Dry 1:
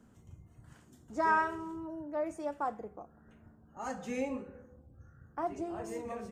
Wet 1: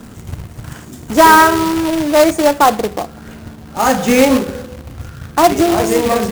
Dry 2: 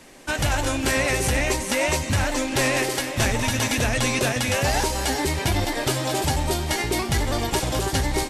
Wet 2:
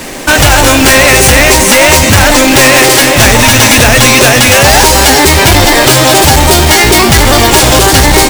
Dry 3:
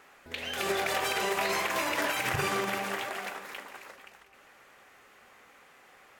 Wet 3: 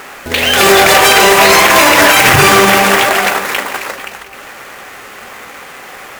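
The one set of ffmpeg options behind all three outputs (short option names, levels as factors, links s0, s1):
-af "acrusher=bits=2:mode=log:mix=0:aa=0.000001,apsyclip=22.4,volume=0.841"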